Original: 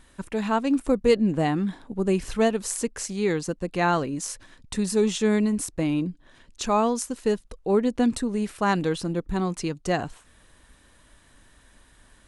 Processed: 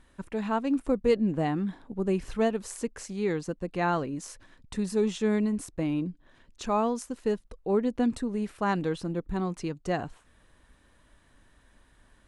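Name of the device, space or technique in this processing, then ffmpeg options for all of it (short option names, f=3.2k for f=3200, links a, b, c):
behind a face mask: -af "highshelf=f=3.4k:g=-8,volume=-4dB"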